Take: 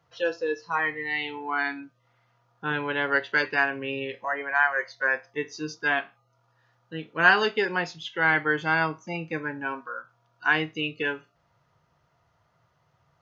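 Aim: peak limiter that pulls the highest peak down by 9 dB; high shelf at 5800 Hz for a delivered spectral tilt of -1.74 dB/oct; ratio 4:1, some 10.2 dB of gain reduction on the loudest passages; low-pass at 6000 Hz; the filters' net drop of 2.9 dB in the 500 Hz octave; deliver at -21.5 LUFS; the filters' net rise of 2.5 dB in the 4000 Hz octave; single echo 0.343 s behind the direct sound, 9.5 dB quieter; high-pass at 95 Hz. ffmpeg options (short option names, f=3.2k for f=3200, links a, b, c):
-af "highpass=95,lowpass=6k,equalizer=f=500:t=o:g=-3.5,equalizer=f=4k:t=o:g=6.5,highshelf=f=5.8k:g=-6,acompressor=threshold=-25dB:ratio=4,alimiter=limit=-22.5dB:level=0:latency=1,aecho=1:1:343:0.335,volume=12dB"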